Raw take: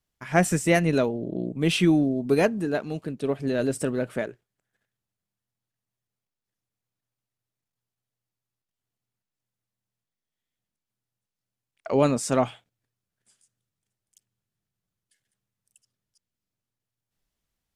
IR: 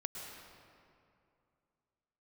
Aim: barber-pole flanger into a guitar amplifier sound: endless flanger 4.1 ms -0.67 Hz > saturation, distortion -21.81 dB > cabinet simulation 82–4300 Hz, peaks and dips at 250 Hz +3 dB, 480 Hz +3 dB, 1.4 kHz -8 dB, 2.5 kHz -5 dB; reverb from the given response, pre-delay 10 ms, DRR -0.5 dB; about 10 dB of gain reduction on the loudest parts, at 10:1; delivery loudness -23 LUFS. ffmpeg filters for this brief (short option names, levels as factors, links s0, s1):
-filter_complex "[0:a]acompressor=threshold=0.0562:ratio=10,asplit=2[s0][s1];[1:a]atrim=start_sample=2205,adelay=10[s2];[s1][s2]afir=irnorm=-1:irlink=0,volume=1.12[s3];[s0][s3]amix=inputs=2:normalize=0,asplit=2[s4][s5];[s5]adelay=4.1,afreqshift=-0.67[s6];[s4][s6]amix=inputs=2:normalize=1,asoftclip=threshold=0.0944,highpass=82,equalizer=f=250:t=q:w=4:g=3,equalizer=f=480:t=q:w=4:g=3,equalizer=f=1400:t=q:w=4:g=-8,equalizer=f=2500:t=q:w=4:g=-5,lowpass=f=4300:w=0.5412,lowpass=f=4300:w=1.3066,volume=2.66"